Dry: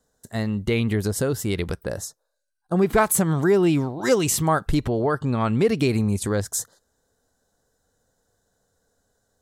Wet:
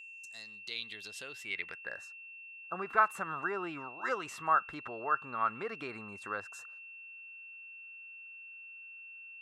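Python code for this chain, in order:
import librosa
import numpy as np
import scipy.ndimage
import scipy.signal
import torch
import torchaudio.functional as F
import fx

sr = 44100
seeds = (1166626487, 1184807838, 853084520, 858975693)

y = fx.filter_sweep_bandpass(x, sr, from_hz=7300.0, to_hz=1300.0, start_s=0.05, end_s=2.25, q=3.6)
y = y + 10.0 ** (-47.0 / 20.0) * np.sin(2.0 * np.pi * 2700.0 * np.arange(len(y)) / sr)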